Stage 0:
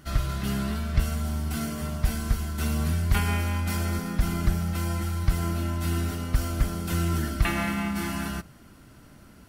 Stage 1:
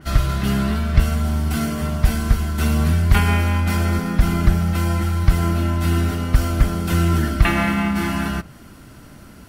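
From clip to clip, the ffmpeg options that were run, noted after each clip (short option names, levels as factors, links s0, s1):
-af "adynamicequalizer=threshold=0.00355:dfrequency=4100:dqfactor=0.7:tfrequency=4100:tqfactor=0.7:attack=5:release=100:ratio=0.375:range=3.5:mode=cutabove:tftype=highshelf,volume=2.66"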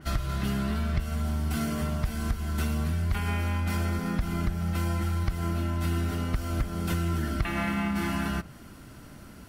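-af "acompressor=threshold=0.1:ratio=6,volume=0.596"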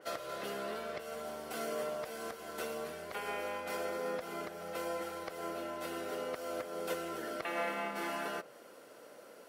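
-af "highpass=f=500:t=q:w=6.2,volume=0.473"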